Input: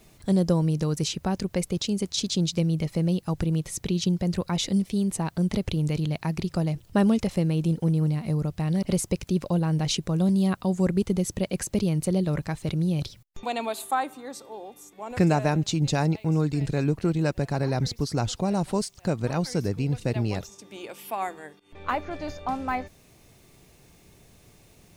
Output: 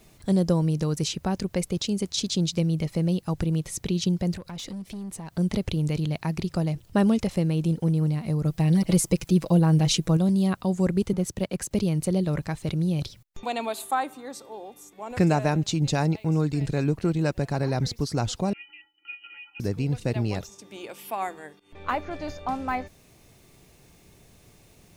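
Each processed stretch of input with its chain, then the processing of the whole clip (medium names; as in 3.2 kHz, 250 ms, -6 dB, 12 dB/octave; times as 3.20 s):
4.32–5.35 s: compression 5:1, threshold -32 dBFS + hard clipper -31.5 dBFS
8.45–10.17 s: treble shelf 10 kHz +5.5 dB + comb 6.1 ms, depth 85%
11.13–11.71 s: companding laws mixed up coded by A + three bands expanded up and down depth 40%
18.53–19.60 s: feedback comb 540 Hz, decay 0.19 s, mix 100% + frequency inversion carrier 3 kHz
whole clip: none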